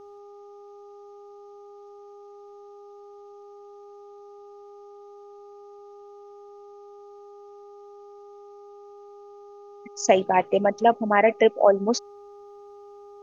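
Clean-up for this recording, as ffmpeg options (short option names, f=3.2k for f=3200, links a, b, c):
-af "bandreject=f=407:t=h:w=4,bandreject=f=814:t=h:w=4,bandreject=f=1.221k:t=h:w=4,agate=range=-21dB:threshold=-38dB"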